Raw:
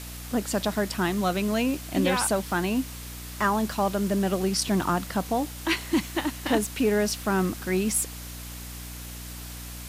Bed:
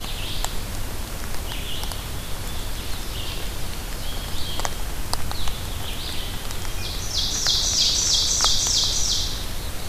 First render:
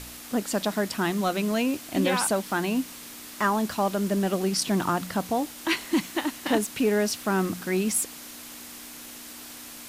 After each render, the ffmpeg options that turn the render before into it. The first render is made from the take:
-af "bandreject=f=60:t=h:w=4,bandreject=f=120:t=h:w=4,bandreject=f=180:t=h:w=4"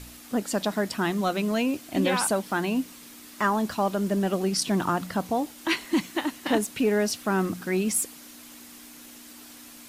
-af "afftdn=nr=6:nf=-43"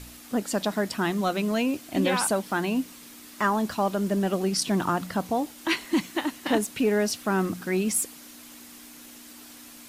-af anull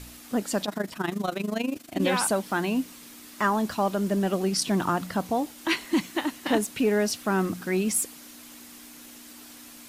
-filter_complex "[0:a]asettb=1/sr,asplit=3[a][b][c];[a]atrim=end=0.654[d];[b]atrim=start=0.65:end=2.02,asetpts=PTS-STARTPTS,afade=t=in:d=0.004:c=qsin,afade=t=out:st=1.366:d=0.004:c=qsin,tremolo=f=25:d=0.824[e];[c]atrim=start=2.016[f];[d][e]acrossfade=d=0.004:c1=hsin:c2=qsin[g];[g][f]acrossfade=d=0.004:c1=qsin:c2=hsin"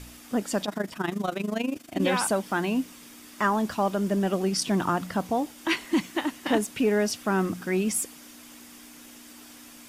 -af "highshelf=f=11k:g=-5.5,bandreject=f=4.1k:w=12"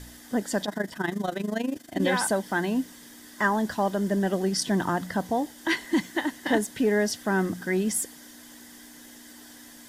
-af "superequalizer=10b=0.562:11b=1.58:12b=0.398"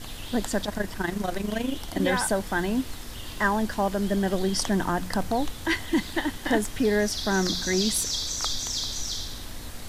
-filter_complex "[1:a]volume=-9.5dB[a];[0:a][a]amix=inputs=2:normalize=0"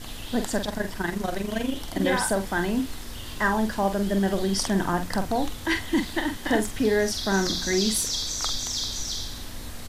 -filter_complex "[0:a]asplit=2[a][b];[b]adelay=46,volume=-8dB[c];[a][c]amix=inputs=2:normalize=0"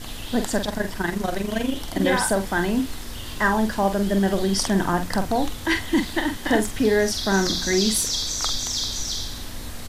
-af "volume=3dB"

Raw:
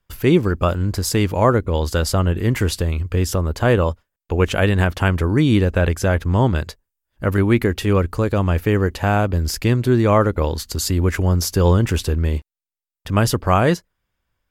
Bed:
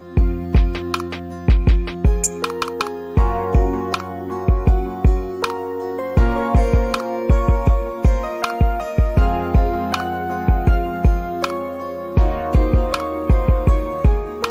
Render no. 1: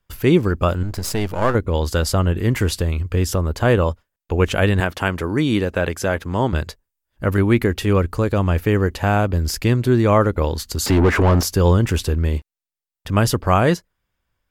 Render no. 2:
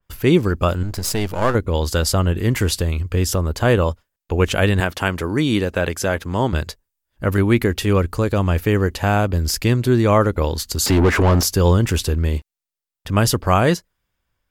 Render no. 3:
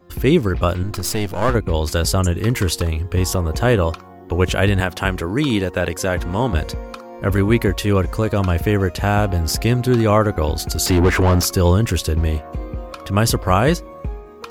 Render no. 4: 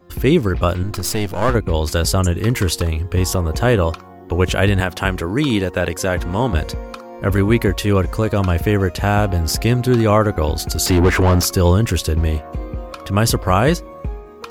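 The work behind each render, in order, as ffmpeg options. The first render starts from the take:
-filter_complex "[0:a]asettb=1/sr,asplit=3[a][b][c];[a]atrim=end=0.834[d];[b]atrim=start=0.83:end=1.55,asetpts=PTS-STARTPTS,afade=t=in:d=0.004:c=qsin,afade=t=out:st=0.716:d=0.004:c=qsin,aeval=exprs='if(lt(val(0),0),0.251*val(0),val(0))':c=same[e];[c]atrim=start=1.546[f];[d][e]acrossfade=d=0.004:c1=hsin:c2=qsin[g];[g][f]acrossfade=d=0.004:c1=qsin:c2=hsin,asettb=1/sr,asplit=3[h][i][j];[h]atrim=end=4.804[k];[i]atrim=start=4.8:end=6.53,asetpts=PTS-STARTPTS,afade=t=in:d=0.004:c=qsin,afade=t=out:st=1.726:d=0.004:c=qsin,highpass=f=230:p=1[l];[j]atrim=start=6.526[m];[k][l]acrossfade=d=0.004:c1=hsin:c2=qsin[n];[n][m]acrossfade=d=0.004:c1=qsin:c2=hsin,asettb=1/sr,asplit=3[o][p][q];[o]atrim=end=10.864[r];[p]atrim=start=10.86:end=11.43,asetpts=PTS-STARTPTS,afade=t=in:d=0.004:c=qsin,afade=t=out:st=0.566:d=0.004:c=qsin,asplit=2[s][t];[t]highpass=f=720:p=1,volume=28dB,asoftclip=type=tanh:threshold=-6dB[u];[s][u]amix=inputs=2:normalize=0,lowpass=f=1.1k:p=1,volume=-6dB[v];[q]atrim=start=11.426[w];[r][v]acrossfade=d=0.004:c1=hsin:c2=qsin[x];[x][w]acrossfade=d=0.004:c1=qsin:c2=hsin"
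-af "adynamicequalizer=threshold=0.0141:dfrequency=2900:dqfactor=0.7:tfrequency=2900:tqfactor=0.7:attack=5:release=100:ratio=0.375:range=2:mode=boostabove:tftype=highshelf"
-filter_complex "[1:a]volume=-12.5dB[a];[0:a][a]amix=inputs=2:normalize=0"
-af "volume=1dB,alimiter=limit=-3dB:level=0:latency=1"

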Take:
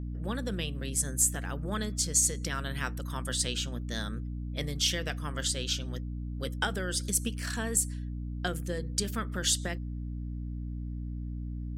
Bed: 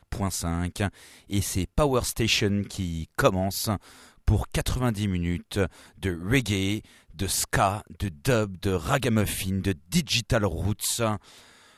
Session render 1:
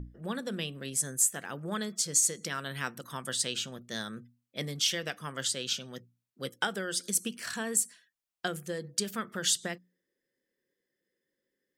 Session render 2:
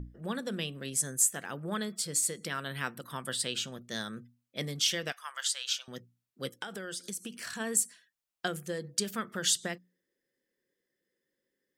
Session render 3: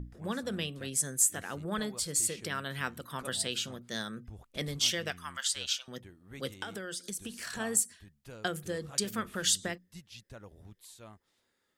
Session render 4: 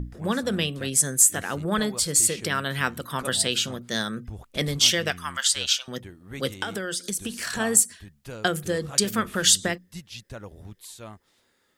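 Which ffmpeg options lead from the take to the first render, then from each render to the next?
-af "bandreject=f=60:t=h:w=6,bandreject=f=120:t=h:w=6,bandreject=f=180:t=h:w=6,bandreject=f=240:t=h:w=6,bandreject=f=300:t=h:w=6"
-filter_complex "[0:a]asettb=1/sr,asplit=3[a][b][c];[a]atrim=end=1.554[d];[b]atrim=start=1.55:end=3.57,asetpts=PTS-STARTPTS,afade=t=in:d=0.004:c=qsin,afade=t=out:st=2.016:d=0.004:c=qsin,equalizer=f=6.3k:w=3.4:g=-11[e];[c]atrim=start=3.566[f];[d][e]acrossfade=d=0.004:c1=hsin:c2=qsin[g];[g][f]acrossfade=d=0.004:c1=qsin:c2=hsin,asettb=1/sr,asplit=3[h][i][j];[h]atrim=end=5.124[k];[i]atrim=start=5.12:end=5.88,asetpts=PTS-STARTPTS,afade=t=in:d=0.004:c=qsin,afade=t=out:st=0.756:d=0.004:c=qsin,highpass=f=860:w=0.5412,highpass=f=860:w=1.3066[l];[j]atrim=start=5.876[m];[k][l]acrossfade=d=0.004:c1=hsin:c2=qsin[n];[n][m]acrossfade=d=0.004:c1=qsin:c2=hsin,asplit=3[o][p][q];[o]afade=t=out:st=6.57:d=0.02[r];[p]acompressor=threshold=-36dB:ratio=4:attack=3.2:release=140:knee=1:detection=peak,afade=t=in:st=6.57:d=0.02,afade=t=out:st=7.59:d=0.02[s];[q]afade=t=in:st=7.59:d=0.02[t];[r][s][t]amix=inputs=3:normalize=0"
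-filter_complex "[1:a]volume=-25.5dB[a];[0:a][a]amix=inputs=2:normalize=0"
-af "volume=9.5dB,alimiter=limit=-3dB:level=0:latency=1"

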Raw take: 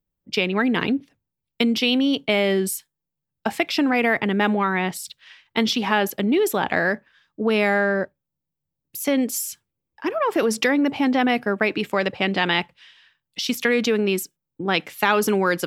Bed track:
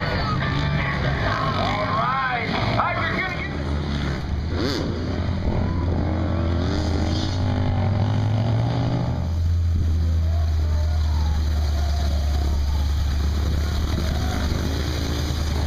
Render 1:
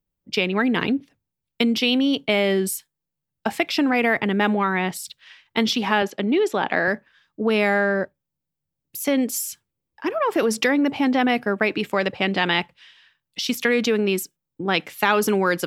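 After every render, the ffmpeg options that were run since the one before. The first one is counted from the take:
-filter_complex "[0:a]asettb=1/sr,asplit=3[a][b][c];[a]atrim=end=6.024[d];[b]atrim=start=6.02:end=6.88,asetpts=PTS-STARTPTS,afade=t=in:d=0.004:c=qsin,afade=t=out:st=0.856:d=0.004:c=qsin,highpass=180,lowpass=5.3k[e];[c]atrim=start=6.876[f];[d][e]acrossfade=d=0.004:c1=hsin:c2=qsin[g];[g][f]acrossfade=d=0.004:c1=qsin:c2=hsin"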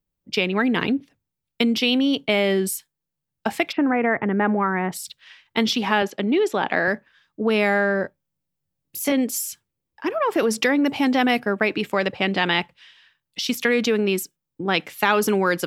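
-filter_complex "[0:a]asplit=3[a][b][c];[a]afade=t=out:st=3.71:d=0.02[d];[b]lowpass=f=1.9k:w=0.5412,lowpass=f=1.9k:w=1.3066,afade=t=in:st=3.71:d=0.02,afade=t=out:st=4.91:d=0.02[e];[c]afade=t=in:st=4.91:d=0.02[f];[d][e][f]amix=inputs=3:normalize=0,asettb=1/sr,asplit=3[g][h][i];[g]atrim=end=8.024[j];[h]atrim=start=8.02:end=9.12,asetpts=PTS-STARTPTS,afade=t=in:d=0.004:c=qsin,afade=t=out:st=1.096:d=0.004:c=qsin,asplit=2[k][l];[l]adelay=22,volume=-4dB[m];[k][m]amix=inputs=2:normalize=0,atrim=end_sample=48510[n];[i]atrim=start=9.116[o];[j][n]acrossfade=d=0.004:c1=hsin:c2=qsin[p];[p][o]acrossfade=d=0.004:c1=qsin:c2=hsin,asettb=1/sr,asplit=3[q][r][s];[q]atrim=end=10.844[t];[r]atrim=start=10.84:end=11.4,asetpts=PTS-STARTPTS,afade=t=in:d=0.004:c=qsin,afade=t=out:st=0.556:d=0.004:c=qsin,highshelf=f=4.5k:g=9[u];[s]atrim=start=11.396[v];[t][u]acrossfade=d=0.004:c1=hsin:c2=qsin[w];[w][v]acrossfade=d=0.004:c1=qsin:c2=hsin"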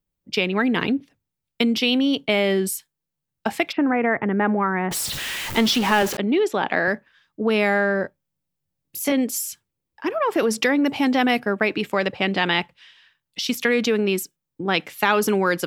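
-filter_complex "[0:a]asettb=1/sr,asplit=3[a][b][c];[a]atrim=end=4.914[d];[b]atrim=start=4.91:end=6.17,asetpts=PTS-STARTPTS,afade=t=in:d=0.004:c=qsin,afade=t=out:st=1.256:d=0.004:c=qsin,aeval=exprs='val(0)+0.5*0.0668*sgn(val(0))':c=same[e];[c]atrim=start=6.166[f];[d][e]acrossfade=d=0.004:c1=hsin:c2=qsin[g];[g][f]acrossfade=d=0.004:c1=qsin:c2=hsin"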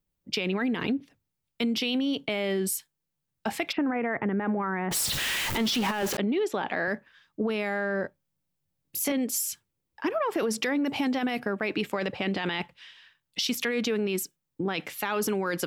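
-af "alimiter=limit=-15dB:level=0:latency=1:release=13,acompressor=threshold=-24dB:ratio=6"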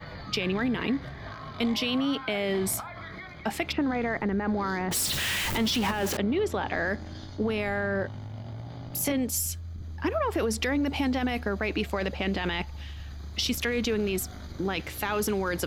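-filter_complex "[1:a]volume=-18dB[a];[0:a][a]amix=inputs=2:normalize=0"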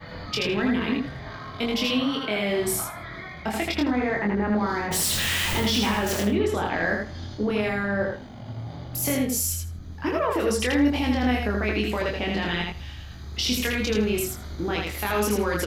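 -filter_complex "[0:a]asplit=2[a][b];[b]adelay=24,volume=-3dB[c];[a][c]amix=inputs=2:normalize=0,aecho=1:1:80|160|240:0.708|0.113|0.0181"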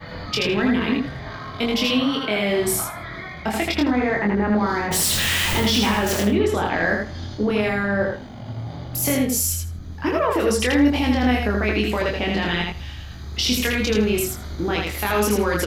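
-af "volume=4dB"

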